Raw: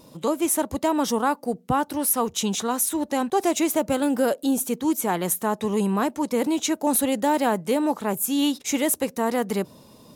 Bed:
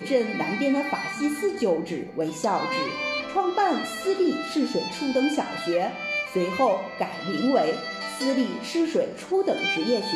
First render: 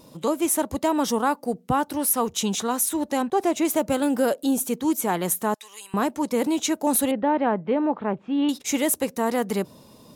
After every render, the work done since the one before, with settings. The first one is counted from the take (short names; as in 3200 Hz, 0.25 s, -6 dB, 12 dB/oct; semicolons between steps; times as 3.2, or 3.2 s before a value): 3.22–3.65 high shelf 3300 Hz -8.5 dB; 5.54–5.94 Bessel high-pass 2800 Hz; 7.11–8.49 Bessel low-pass 1900 Hz, order 6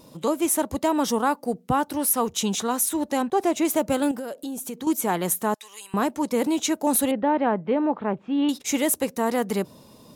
4.11–4.87 compressor 8:1, threshold -29 dBFS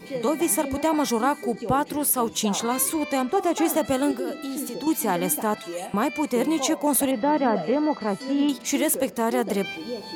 add bed -9 dB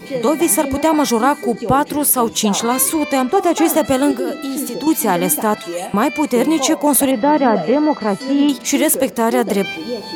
gain +8 dB